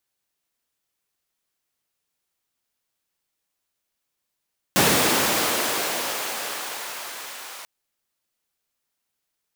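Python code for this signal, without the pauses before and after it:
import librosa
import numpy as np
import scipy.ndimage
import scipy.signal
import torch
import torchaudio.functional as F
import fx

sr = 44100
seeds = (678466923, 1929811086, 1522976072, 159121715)

y = fx.riser_noise(sr, seeds[0], length_s=2.89, colour='pink', kind='highpass', start_hz=150.0, end_hz=870.0, q=0.79, swell_db=-20, law='linear')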